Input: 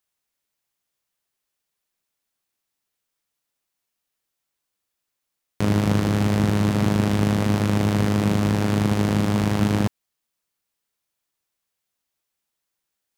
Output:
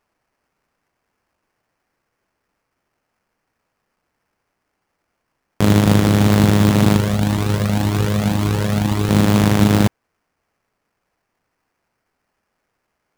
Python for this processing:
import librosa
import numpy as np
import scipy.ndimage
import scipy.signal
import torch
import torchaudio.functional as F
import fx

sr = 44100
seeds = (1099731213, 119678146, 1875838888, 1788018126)

y = fx.sample_hold(x, sr, seeds[0], rate_hz=3700.0, jitter_pct=20)
y = fx.comb_cascade(y, sr, direction='rising', hz=1.9, at=(6.97, 9.09), fade=0.02)
y = y * 10.0 ** (7.0 / 20.0)